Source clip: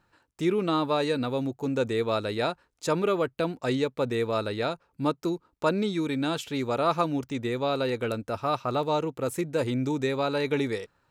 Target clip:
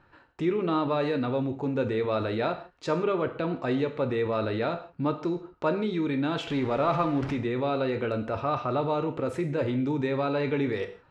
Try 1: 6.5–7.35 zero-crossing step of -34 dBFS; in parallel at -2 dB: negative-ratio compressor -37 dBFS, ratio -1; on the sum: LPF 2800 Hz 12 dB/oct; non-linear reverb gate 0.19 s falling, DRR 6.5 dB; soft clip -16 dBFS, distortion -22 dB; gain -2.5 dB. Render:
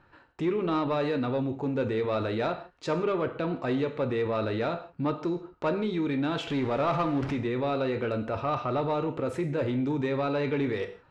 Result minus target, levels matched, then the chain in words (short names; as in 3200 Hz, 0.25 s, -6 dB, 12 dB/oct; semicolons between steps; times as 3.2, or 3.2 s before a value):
soft clip: distortion +18 dB
6.5–7.35 zero-crossing step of -34 dBFS; in parallel at -2 dB: negative-ratio compressor -37 dBFS, ratio -1; on the sum: LPF 2800 Hz 12 dB/oct; non-linear reverb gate 0.19 s falling, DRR 6.5 dB; soft clip -5.5 dBFS, distortion -40 dB; gain -2.5 dB